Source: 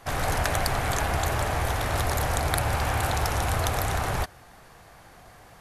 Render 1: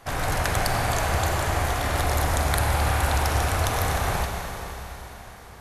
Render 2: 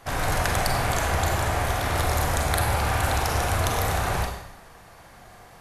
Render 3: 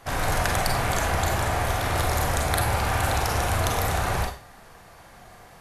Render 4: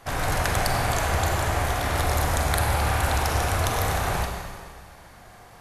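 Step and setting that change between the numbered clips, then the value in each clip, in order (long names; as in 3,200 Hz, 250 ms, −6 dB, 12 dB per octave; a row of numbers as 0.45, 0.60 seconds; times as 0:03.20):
four-comb reverb, RT60: 4.2, 0.79, 0.37, 1.8 seconds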